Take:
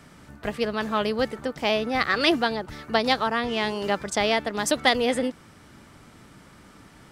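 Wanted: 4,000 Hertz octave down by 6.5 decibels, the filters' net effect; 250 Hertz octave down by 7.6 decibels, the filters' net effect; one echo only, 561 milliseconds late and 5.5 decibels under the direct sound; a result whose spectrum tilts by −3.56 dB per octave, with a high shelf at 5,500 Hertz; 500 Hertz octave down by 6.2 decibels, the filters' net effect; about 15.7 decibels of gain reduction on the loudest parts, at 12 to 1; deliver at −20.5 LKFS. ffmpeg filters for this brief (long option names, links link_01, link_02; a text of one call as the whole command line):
ffmpeg -i in.wav -af "equalizer=frequency=250:width_type=o:gain=-7.5,equalizer=frequency=500:width_type=o:gain=-6,equalizer=frequency=4000:width_type=o:gain=-7,highshelf=frequency=5500:gain=-4,acompressor=threshold=-35dB:ratio=12,aecho=1:1:561:0.531,volume=19dB" out.wav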